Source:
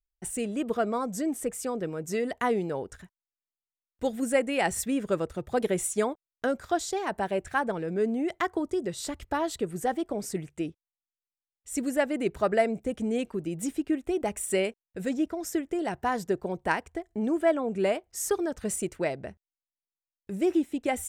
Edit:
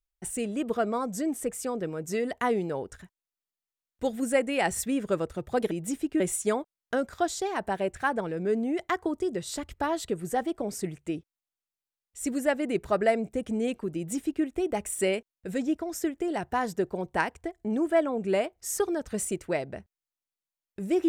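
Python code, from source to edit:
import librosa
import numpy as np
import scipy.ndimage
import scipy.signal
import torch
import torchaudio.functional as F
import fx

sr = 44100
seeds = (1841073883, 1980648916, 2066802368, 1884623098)

y = fx.edit(x, sr, fx.duplicate(start_s=13.46, length_s=0.49, to_s=5.71), tone=tone)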